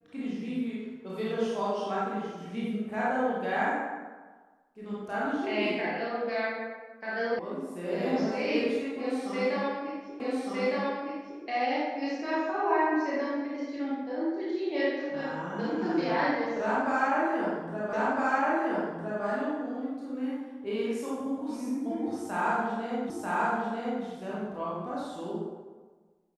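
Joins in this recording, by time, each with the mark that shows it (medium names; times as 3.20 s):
7.39 s: sound stops dead
10.20 s: repeat of the last 1.21 s
17.93 s: repeat of the last 1.31 s
23.10 s: repeat of the last 0.94 s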